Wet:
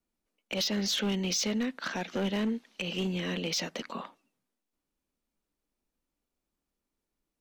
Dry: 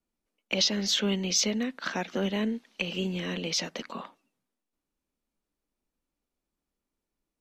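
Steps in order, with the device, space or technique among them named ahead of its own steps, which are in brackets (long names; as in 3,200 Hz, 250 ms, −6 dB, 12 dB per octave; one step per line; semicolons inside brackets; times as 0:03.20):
limiter into clipper (brickwall limiter −19.5 dBFS, peak gain reduction 7 dB; hard clipping −25 dBFS, distortion −16 dB)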